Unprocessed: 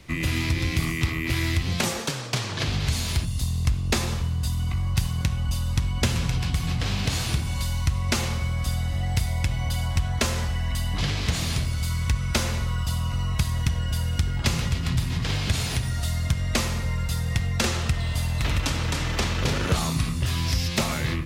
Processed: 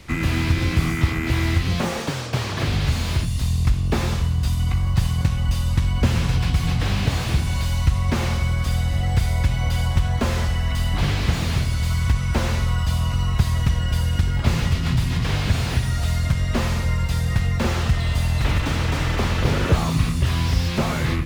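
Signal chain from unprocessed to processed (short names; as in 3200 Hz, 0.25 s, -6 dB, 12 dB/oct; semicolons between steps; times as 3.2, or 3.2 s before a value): short-mantissa float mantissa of 6-bit; harmoniser -7 st -10 dB; slew limiter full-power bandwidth 65 Hz; gain +4.5 dB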